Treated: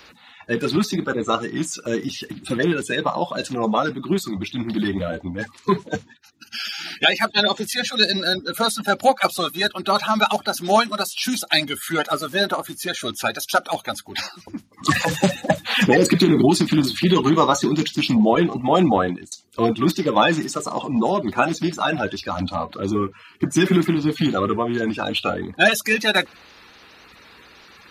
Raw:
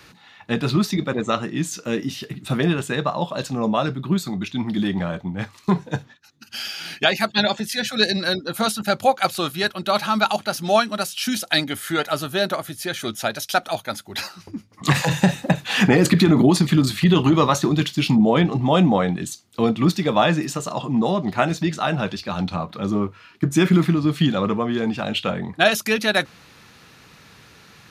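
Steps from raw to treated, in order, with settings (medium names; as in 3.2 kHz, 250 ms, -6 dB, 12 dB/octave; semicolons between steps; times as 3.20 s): coarse spectral quantiser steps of 30 dB; 18.35–19.32 s: expander -18 dBFS; peaking EQ 130 Hz -8.5 dB 0.77 oct; trim +2 dB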